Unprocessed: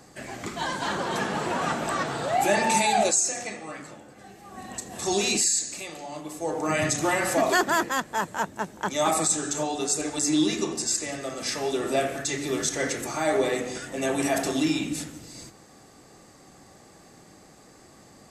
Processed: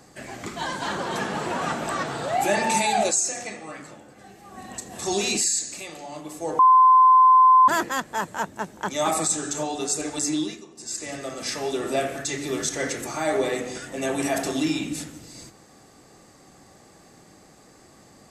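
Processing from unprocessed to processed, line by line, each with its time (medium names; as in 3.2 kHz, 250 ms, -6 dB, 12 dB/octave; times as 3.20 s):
6.59–7.68 s: bleep 1.03 kHz -10.5 dBFS
10.23–11.15 s: dip -17.5 dB, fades 0.40 s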